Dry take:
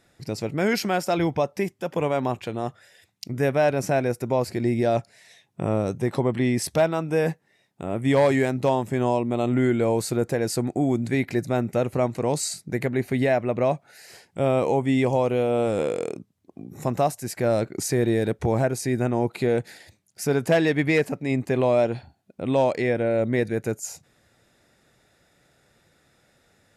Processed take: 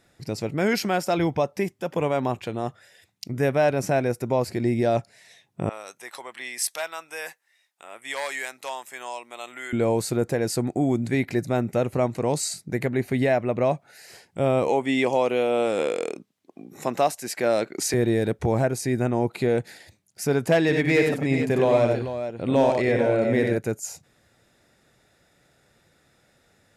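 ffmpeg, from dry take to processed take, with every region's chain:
ffmpeg -i in.wav -filter_complex "[0:a]asettb=1/sr,asplit=3[link_01][link_02][link_03];[link_01]atrim=end=5.694[link_04];[link_02]atrim=start=5.69:end=9.73,asetpts=PTS-STARTPTS,afade=type=in:duration=0.004:curve=qsin,afade=type=out:start_time=4.036:duration=0.004:curve=qsin,highpass=1300,adynamicequalizer=threshold=0.00355:dfrequency=6300:dqfactor=0.7:tfrequency=6300:tqfactor=0.7:attack=5:release=100:ratio=0.375:range=3:mode=boostabove:tftype=highshelf[link_05];[link_03]atrim=start=9.726[link_06];[link_04][link_05]acrossfade=duration=0.004:curve1=hsin:curve2=qsin[link_07];[link_07][link_06]acrossfade=duration=0.004:curve1=qsin:curve2=hsin,asettb=1/sr,asplit=3[link_08][link_09][link_10];[link_08]atrim=end=14.684[link_11];[link_09]atrim=start=14.68:end=17.94,asetpts=PTS-STARTPTS,afade=type=in:duration=0.004:curve=qsin,afade=type=out:start_time=3.256:duration=0.004:curve=qsin,highpass=250,equalizer=frequency=3000:width_type=o:width=2.4:gain=5.5[link_12];[link_10]atrim=start=17.936[link_13];[link_11][link_12]acrossfade=duration=0.004:curve1=hsin:curve2=qsin[link_14];[link_14][link_13]acrossfade=duration=0.004:curve1=qsin:curve2=hsin,asettb=1/sr,asplit=3[link_15][link_16][link_17];[link_15]atrim=end=20.634[link_18];[link_16]atrim=start=20.63:end=23.58,asetpts=PTS-STARTPTS,afade=type=in:duration=0.004:curve=qsin,afade=type=out:start_time=2.946:duration=0.004:curve=qsin,asoftclip=type=hard:threshold=-13dB,aecho=1:1:59|93|441:0.355|0.596|0.316,atrim=end_sample=130095[link_19];[link_17]atrim=start=23.576[link_20];[link_18][link_19]acrossfade=duration=0.004:curve1=hsin:curve2=qsin[link_21];[link_21][link_20]acrossfade=duration=0.004:curve1=qsin:curve2=hsin" out.wav

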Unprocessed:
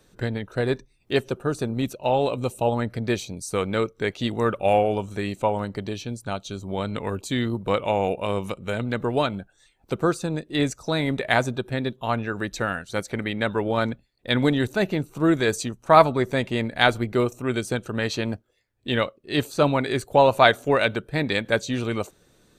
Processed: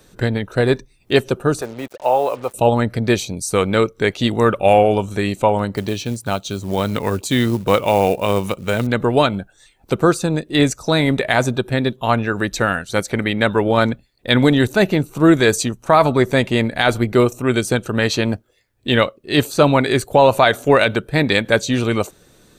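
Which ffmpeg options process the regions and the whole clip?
ffmpeg -i in.wav -filter_complex "[0:a]asettb=1/sr,asplit=3[link_01][link_02][link_03];[link_01]atrim=end=1.614[link_04];[link_02]atrim=start=1.61:end=2.54,asetpts=PTS-STARTPTS,afade=type=in:duration=0.004:curve=qsin,afade=type=out:start_time=0.926:duration=0.004:curve=qsin,acrossover=split=450 2100:gain=0.141 1 0.112[link_05][link_06][link_07];[link_05][link_06][link_07]amix=inputs=3:normalize=0,acrusher=bits=7:mix=0:aa=0.5[link_08];[link_03]atrim=start=2.536[link_09];[link_04][link_08]acrossfade=duration=0.004:curve1=hsin:curve2=qsin[link_10];[link_10][link_09]acrossfade=duration=0.004:curve1=qsin:curve2=hsin,asettb=1/sr,asplit=3[link_11][link_12][link_13];[link_11]atrim=end=5.744[link_14];[link_12]atrim=start=5.74:end=8.87,asetpts=PTS-STARTPTS,afade=type=in:duration=0.004:curve=qsin,afade=type=out:start_time=3.126:duration=0.004:curve=qsin,highpass=42,acrusher=bits=6:mode=log:mix=0:aa=0.000001[link_15];[link_13]atrim=start=8.866[link_16];[link_14][link_15]acrossfade=duration=0.004:curve1=hsin:curve2=qsin[link_17];[link_17][link_16]acrossfade=duration=0.004:curve1=qsin:curve2=hsin,highshelf=frequency=9000:gain=4,alimiter=level_in=9dB:limit=-1dB:release=50:level=0:latency=1,volume=-1dB" out.wav

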